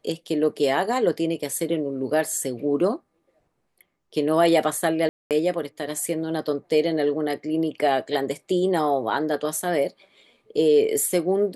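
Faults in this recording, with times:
5.09–5.31 s: dropout 218 ms

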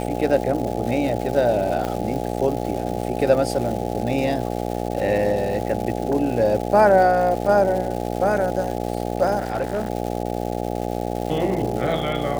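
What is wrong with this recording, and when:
buzz 60 Hz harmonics 14 -26 dBFS
crackle 440 per s -29 dBFS
1.85 s: pop -12 dBFS
9.38–9.90 s: clipped -18.5 dBFS

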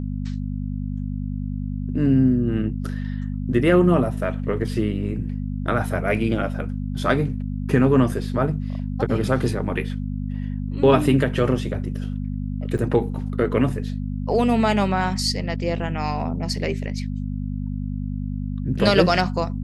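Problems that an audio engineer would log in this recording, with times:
hum 50 Hz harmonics 5 -27 dBFS
12.78–12.79 s: dropout 5.5 ms

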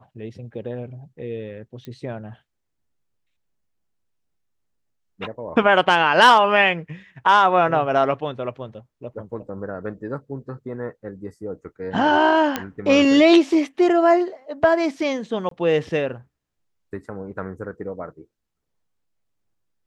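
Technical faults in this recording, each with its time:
1.85 s: pop -23 dBFS
12.56 s: pop -8 dBFS
15.49–15.51 s: dropout 23 ms

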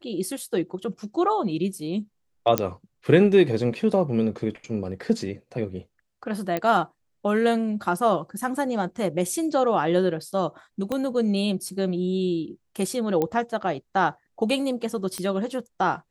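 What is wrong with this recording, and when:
2.58 s: pop -4 dBFS
6.57 s: pop -13 dBFS
10.92 s: pop -15 dBFS
13.22 s: pop -12 dBFS
15.18 s: pop -16 dBFS

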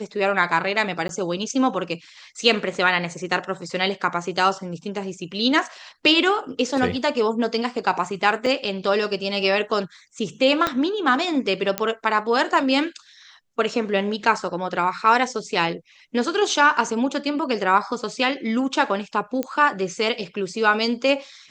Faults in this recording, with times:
1.08–1.09 s: dropout 12 ms
8.46 s: dropout 3.6 ms
10.67 s: pop -7 dBFS
11.78 s: pop -6 dBFS
19.43 s: pop -12 dBFS

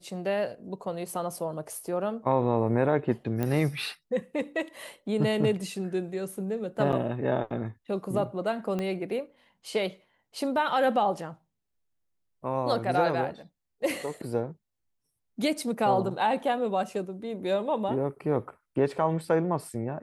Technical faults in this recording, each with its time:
3.43 s: pop -17 dBFS
6.92–6.93 s: dropout 7.4 ms
8.79 s: pop -19 dBFS

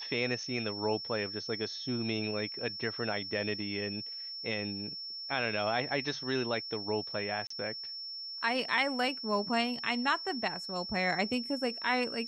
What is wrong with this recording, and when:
whine 5.4 kHz -39 dBFS
7.47–7.50 s: dropout 34 ms

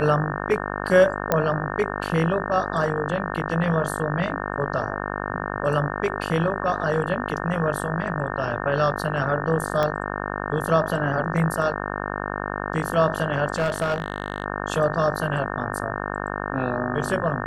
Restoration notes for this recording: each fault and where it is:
buzz 50 Hz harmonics 36 -29 dBFS
1.32 s: pop -6 dBFS
9.83 s: pop -11 dBFS
13.56–14.44 s: clipped -17.5 dBFS

